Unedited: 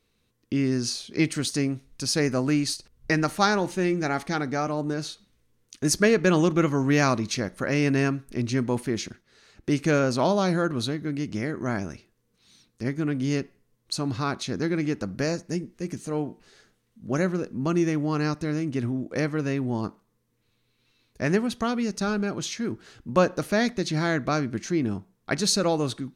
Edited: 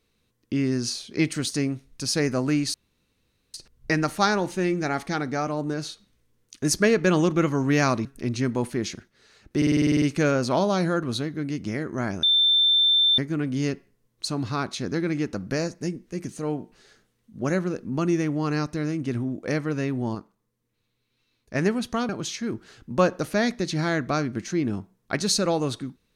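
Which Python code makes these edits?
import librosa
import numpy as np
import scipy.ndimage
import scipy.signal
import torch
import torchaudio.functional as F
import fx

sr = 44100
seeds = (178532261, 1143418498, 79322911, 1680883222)

y = fx.edit(x, sr, fx.insert_room_tone(at_s=2.74, length_s=0.8),
    fx.cut(start_s=7.25, length_s=0.93),
    fx.stutter(start_s=9.7, slice_s=0.05, count=10),
    fx.bleep(start_s=11.91, length_s=0.95, hz=3560.0, db=-16.0),
    fx.clip_gain(start_s=19.83, length_s=1.4, db=-5.0),
    fx.cut(start_s=21.77, length_s=0.5), tone=tone)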